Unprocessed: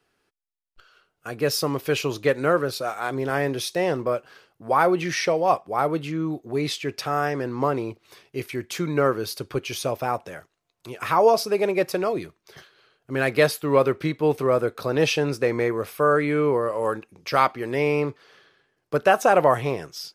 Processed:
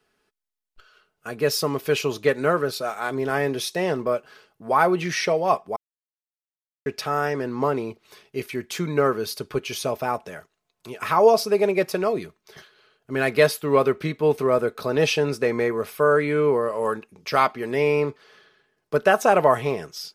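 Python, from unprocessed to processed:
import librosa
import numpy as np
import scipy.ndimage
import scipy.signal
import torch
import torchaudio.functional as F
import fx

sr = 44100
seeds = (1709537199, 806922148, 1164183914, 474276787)

y = fx.edit(x, sr, fx.silence(start_s=5.76, length_s=1.1), tone=tone)
y = y + 0.37 * np.pad(y, (int(4.7 * sr / 1000.0), 0))[:len(y)]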